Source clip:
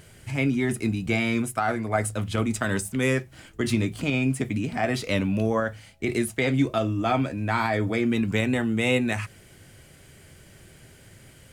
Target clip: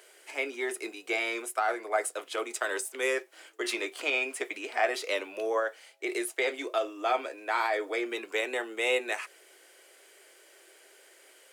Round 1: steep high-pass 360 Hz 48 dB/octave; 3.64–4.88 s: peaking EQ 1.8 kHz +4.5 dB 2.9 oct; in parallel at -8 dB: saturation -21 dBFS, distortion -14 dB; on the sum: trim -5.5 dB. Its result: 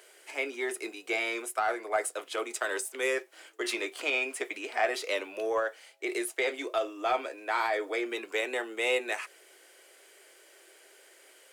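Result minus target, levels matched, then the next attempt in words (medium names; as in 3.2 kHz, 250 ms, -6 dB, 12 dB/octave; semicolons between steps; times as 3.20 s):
saturation: distortion +16 dB
steep high-pass 360 Hz 48 dB/octave; 3.64–4.88 s: peaking EQ 1.8 kHz +4.5 dB 2.9 oct; in parallel at -8 dB: saturation -10 dBFS, distortion -30 dB; on the sum: trim -5.5 dB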